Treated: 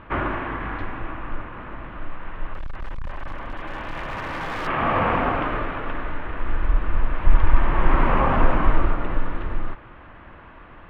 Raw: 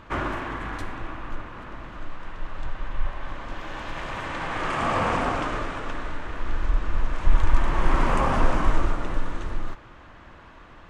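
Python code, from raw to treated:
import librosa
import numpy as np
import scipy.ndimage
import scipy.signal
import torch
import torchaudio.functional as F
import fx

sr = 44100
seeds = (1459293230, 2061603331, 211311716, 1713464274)

y = scipy.signal.sosfilt(scipy.signal.butter(4, 2900.0, 'lowpass', fs=sr, output='sos'), x)
y = fx.overload_stage(y, sr, gain_db=28.0, at=(2.54, 4.67))
y = y * 10.0 ** (3.0 / 20.0)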